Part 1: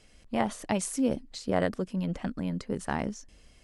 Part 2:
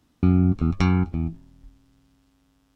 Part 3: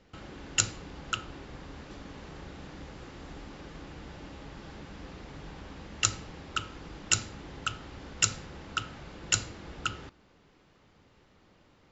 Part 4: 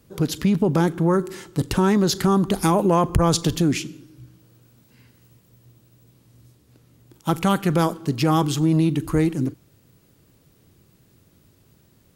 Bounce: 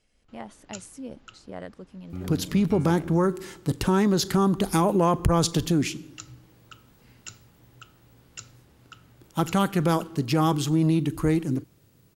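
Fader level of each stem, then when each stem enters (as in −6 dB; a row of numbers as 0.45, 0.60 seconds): −11.5, −17.5, −16.0, −3.0 decibels; 0.00, 1.90, 0.15, 2.10 seconds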